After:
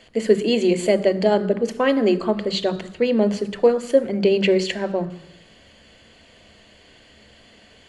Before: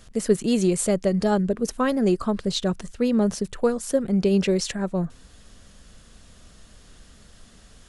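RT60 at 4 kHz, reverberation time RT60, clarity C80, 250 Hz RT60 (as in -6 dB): 0.90 s, 0.85 s, 18.5 dB, 0.85 s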